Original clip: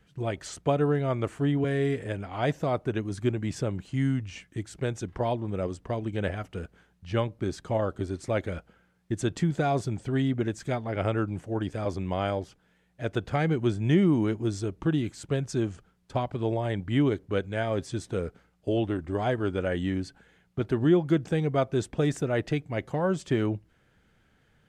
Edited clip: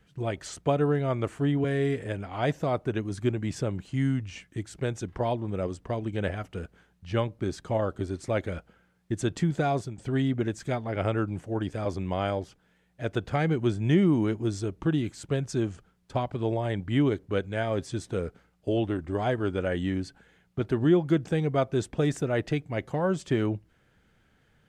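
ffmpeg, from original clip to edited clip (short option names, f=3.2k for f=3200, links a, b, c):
-filter_complex "[0:a]asplit=2[a][b];[a]atrim=end=9.98,asetpts=PTS-STARTPTS,afade=t=out:st=9.62:d=0.36:c=qsin:silence=0.199526[c];[b]atrim=start=9.98,asetpts=PTS-STARTPTS,afade=t=in:d=0.004:c=hsin:silence=0.199526[d];[c][d]concat=n=2:v=0:a=1"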